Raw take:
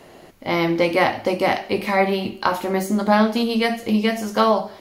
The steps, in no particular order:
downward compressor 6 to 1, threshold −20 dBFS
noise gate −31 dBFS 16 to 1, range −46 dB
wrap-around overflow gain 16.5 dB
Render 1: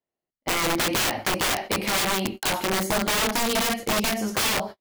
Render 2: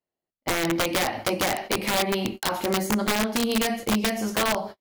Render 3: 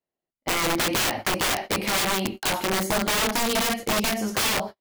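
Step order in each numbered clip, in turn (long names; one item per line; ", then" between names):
noise gate, then wrap-around overflow, then downward compressor
noise gate, then downward compressor, then wrap-around overflow
wrap-around overflow, then noise gate, then downward compressor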